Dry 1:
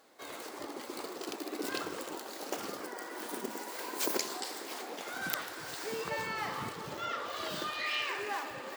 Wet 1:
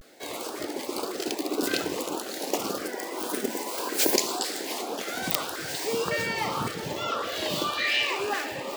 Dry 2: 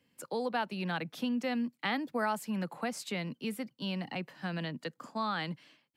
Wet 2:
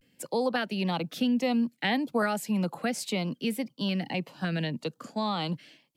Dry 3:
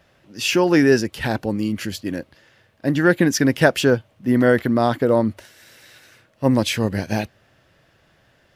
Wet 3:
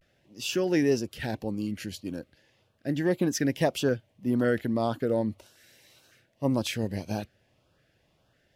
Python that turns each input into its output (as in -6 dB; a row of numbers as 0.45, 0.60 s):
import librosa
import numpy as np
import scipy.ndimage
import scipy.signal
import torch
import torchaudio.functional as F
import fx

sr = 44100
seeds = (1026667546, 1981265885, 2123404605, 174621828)

y = fx.vibrato(x, sr, rate_hz=0.36, depth_cents=50.0)
y = fx.filter_lfo_notch(y, sr, shape='saw_up', hz=1.8, low_hz=860.0, high_hz=2200.0, q=1.4)
y = y * 10.0 ** (-30 / 20.0) / np.sqrt(np.mean(np.square(y)))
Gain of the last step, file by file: +10.5, +7.0, -9.0 dB